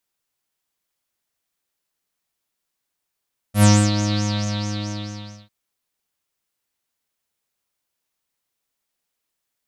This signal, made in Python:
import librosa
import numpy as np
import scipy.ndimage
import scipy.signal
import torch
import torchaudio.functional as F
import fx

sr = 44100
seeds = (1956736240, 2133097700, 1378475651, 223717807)

y = fx.sub_patch_wobble(sr, seeds[0], note=56, wave='triangle', wave2='saw', interval_st=7, level2_db=-9.0, sub_db=-0.5, noise_db=-30.0, kind='lowpass', cutoff_hz=4700.0, q=9.5, env_oct=1.0, env_decay_s=0.41, env_sustain_pct=10, attack_ms=93.0, decay_s=0.28, sustain_db=-10.5, release_s=1.35, note_s=0.6, lfo_hz=4.6, wobble_oct=0.4)